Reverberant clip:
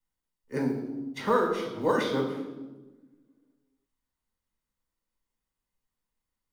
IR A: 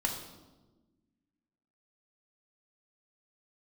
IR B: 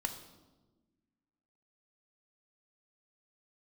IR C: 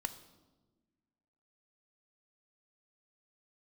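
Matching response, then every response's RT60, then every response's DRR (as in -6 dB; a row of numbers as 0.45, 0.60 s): A; 1.2, 1.2, 1.3 s; 0.5, 5.5, 9.5 dB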